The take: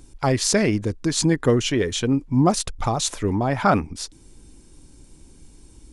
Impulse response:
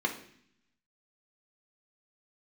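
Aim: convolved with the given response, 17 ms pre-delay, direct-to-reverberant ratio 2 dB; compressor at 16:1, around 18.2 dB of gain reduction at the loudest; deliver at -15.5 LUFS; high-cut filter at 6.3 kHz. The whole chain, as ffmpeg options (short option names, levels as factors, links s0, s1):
-filter_complex "[0:a]lowpass=6300,acompressor=threshold=0.0282:ratio=16,asplit=2[s0][s1];[1:a]atrim=start_sample=2205,adelay=17[s2];[s1][s2]afir=irnorm=-1:irlink=0,volume=0.335[s3];[s0][s3]amix=inputs=2:normalize=0,volume=8.41"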